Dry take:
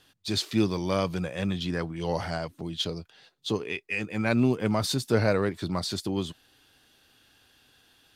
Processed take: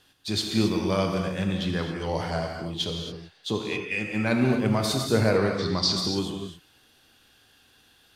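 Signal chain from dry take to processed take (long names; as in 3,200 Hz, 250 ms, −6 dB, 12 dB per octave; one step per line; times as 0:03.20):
0:05.52–0:05.93: low-pass with resonance 5,200 Hz, resonance Q 4.1
reverb whose tail is shaped and stops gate 290 ms flat, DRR 2 dB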